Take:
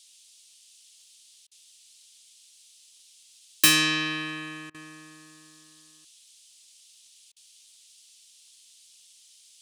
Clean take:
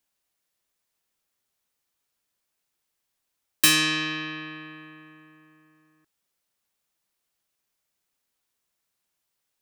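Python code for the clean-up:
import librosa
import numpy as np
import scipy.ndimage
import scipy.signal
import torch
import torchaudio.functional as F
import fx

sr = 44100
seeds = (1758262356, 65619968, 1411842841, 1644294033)

y = fx.fix_declick_ar(x, sr, threshold=6.5)
y = fx.fix_interpolate(y, sr, at_s=(1.47, 4.7, 7.32), length_ms=43.0)
y = fx.noise_reduce(y, sr, print_start_s=2.45, print_end_s=2.95, reduce_db=24.0)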